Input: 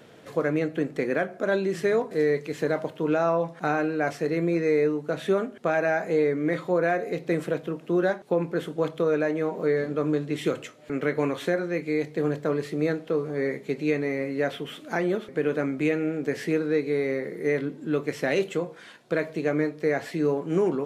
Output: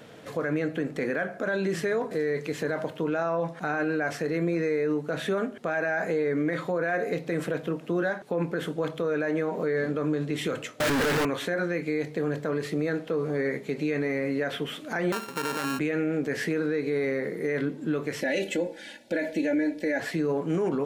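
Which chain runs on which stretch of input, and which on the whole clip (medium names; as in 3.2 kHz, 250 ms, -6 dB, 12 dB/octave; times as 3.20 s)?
10.80–11.25 s: one-bit comparator + treble shelf 5.7 kHz -5.5 dB
15.12–15.79 s: sorted samples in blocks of 32 samples + high-pass 130 Hz
18.21–20.00 s: Butterworth band-stop 1.2 kHz, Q 1.8 + comb 3.5 ms, depth 88%
whole clip: band-stop 370 Hz, Q 12; dynamic bell 1.6 kHz, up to +6 dB, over -45 dBFS, Q 3.8; peak limiter -22 dBFS; trim +3 dB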